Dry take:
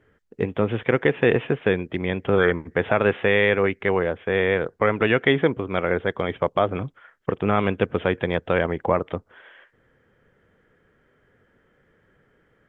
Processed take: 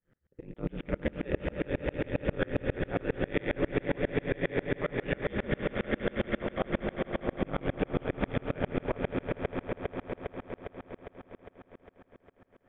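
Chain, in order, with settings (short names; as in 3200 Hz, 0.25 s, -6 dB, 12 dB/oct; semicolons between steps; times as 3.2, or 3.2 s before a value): low shelf 180 Hz +9 dB; ring modulator 73 Hz; dynamic EQ 1100 Hz, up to -4 dB, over -40 dBFS, Q 1.8; swelling echo 81 ms, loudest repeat 8, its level -10 dB; limiter -10.5 dBFS, peak gain reduction 8 dB; dB-ramp tremolo swelling 7.4 Hz, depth 32 dB; gain -2.5 dB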